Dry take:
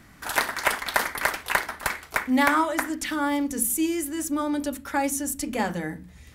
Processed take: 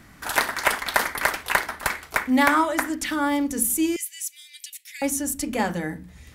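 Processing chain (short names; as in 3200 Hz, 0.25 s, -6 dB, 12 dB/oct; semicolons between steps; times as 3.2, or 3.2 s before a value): 3.96–5.02 steep high-pass 2000 Hz 72 dB/oct; gain +2 dB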